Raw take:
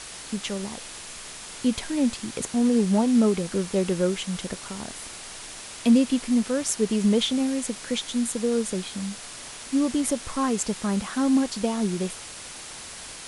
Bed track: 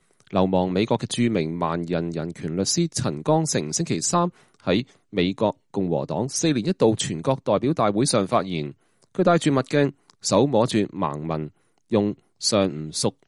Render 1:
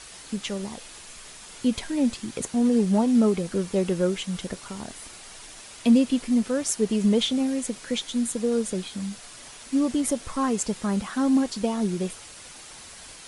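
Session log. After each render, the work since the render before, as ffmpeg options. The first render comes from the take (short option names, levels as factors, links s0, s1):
-af "afftdn=nr=6:nf=-40"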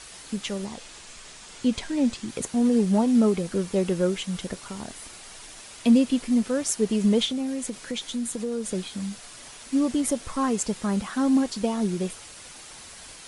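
-filter_complex "[0:a]asettb=1/sr,asplit=3[s0][s1][s2];[s0]atrim=end=0.654[s3];[s1]atrim=start=0.65:end=2.29,asetpts=PTS-STARTPTS,afade=t=in:d=0.004:c=qsin,afade=t=out:st=1.636:d=0.004:c=qsin,lowpass=f=9000:w=0.5412,lowpass=f=9000:w=1.3066[s4];[s2]atrim=start=2.286[s5];[s3][s4]acrossfade=d=0.004:c1=hsin:c2=qsin[s6];[s6][s5]acrossfade=d=0.004:c1=qsin:c2=hsin,asettb=1/sr,asplit=3[s7][s8][s9];[s7]atrim=end=7.254[s10];[s8]atrim=start=7.25:end=8.71,asetpts=PTS-STARTPTS,afade=t=in:d=0.004:c=qsin,afade=t=out:st=1.456:d=0.004:c=qsin,acompressor=threshold=0.0447:ratio=2.5:attack=3.2:release=140:knee=1:detection=peak[s11];[s9]atrim=start=8.706[s12];[s10][s11]acrossfade=d=0.004:c1=hsin:c2=qsin[s13];[s13][s12]acrossfade=d=0.004:c1=qsin:c2=hsin"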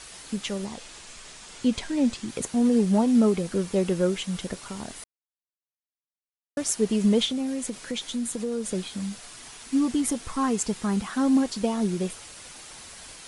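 -filter_complex "[0:a]asettb=1/sr,asplit=3[s0][s1][s2];[s0]atrim=end=9.344[s3];[s1]atrim=start=9.34:end=11.09,asetpts=PTS-STARTPTS,afade=t=in:d=0.004:c=qsin,afade=t=out:st=1.746:d=0.004:c=qsin,bandreject=f=570:w=5.5[s4];[s2]atrim=start=11.086[s5];[s3][s4]acrossfade=d=0.004:c1=hsin:c2=qsin[s6];[s6][s5]acrossfade=d=0.004:c1=qsin:c2=hsin,asplit=3[s7][s8][s9];[s7]atrim=end=5.04,asetpts=PTS-STARTPTS,afade=t=out:st=5.036:d=0.004:c=hsin[s10];[s8]atrim=start=5.04:end=6.57,asetpts=PTS-STARTPTS,volume=0[s11];[s9]atrim=start=6.57,asetpts=PTS-STARTPTS,afade=t=in:d=0.004:c=hsin[s12];[s10][s11][s12]concat=n=3:v=0:a=1"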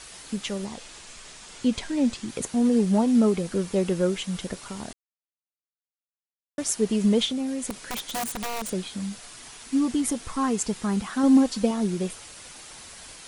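-filter_complex "[0:a]asettb=1/sr,asplit=3[s0][s1][s2];[s0]atrim=end=7.704[s3];[s1]atrim=start=7.7:end=8.73,asetpts=PTS-STARTPTS,afade=t=in:d=0.004:c=qsin,afade=t=out:st=1.026:d=0.004:c=qsin,aeval=exprs='(mod(17.8*val(0)+1,2)-1)/17.8':c=same[s4];[s2]atrim=start=8.726[s5];[s3][s4]acrossfade=d=0.004:c1=hsin:c2=qsin[s6];[s6][s5]acrossfade=d=0.004:c1=qsin:c2=hsin,asettb=1/sr,asplit=3[s7][s8][s9];[s7]atrim=end=11.234[s10];[s8]atrim=start=11.23:end=11.71,asetpts=PTS-STARTPTS,afade=t=in:d=0.004:c=qsin,afade=t=out:st=0.476:d=0.004:c=qsin,aecho=1:1:3.9:0.58,atrim=end_sample=21168[s11];[s9]atrim=start=11.706[s12];[s10][s11]acrossfade=d=0.004:c1=hsin:c2=qsin[s13];[s13][s12]acrossfade=d=0.004:c1=qsin:c2=hsin,asplit=3[s14][s15][s16];[s14]atrim=end=4.93,asetpts=PTS-STARTPTS,afade=t=out:st=4.926:d=0.004:c=hsin[s17];[s15]atrim=start=4.93:end=6.58,asetpts=PTS-STARTPTS,volume=0[s18];[s16]atrim=start=6.58,asetpts=PTS-STARTPTS,afade=t=in:d=0.004:c=hsin[s19];[s17][s18][s19]concat=n=3:v=0:a=1"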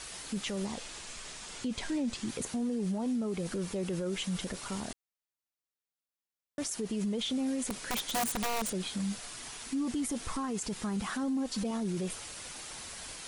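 -af "acompressor=threshold=0.0562:ratio=6,alimiter=level_in=1.33:limit=0.0631:level=0:latency=1:release=15,volume=0.75"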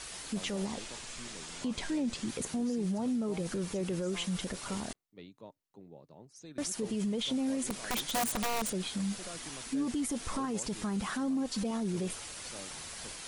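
-filter_complex "[1:a]volume=0.0355[s0];[0:a][s0]amix=inputs=2:normalize=0"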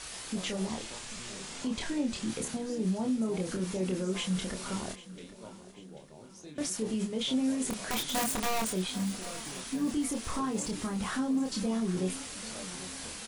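-filter_complex "[0:a]asplit=2[s0][s1];[s1]adelay=27,volume=0.668[s2];[s0][s2]amix=inputs=2:normalize=0,aecho=1:1:790|1580|2370|3160|3950:0.15|0.0763|0.0389|0.0198|0.0101"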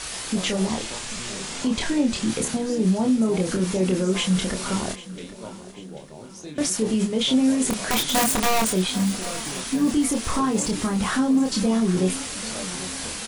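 -af "volume=3.16"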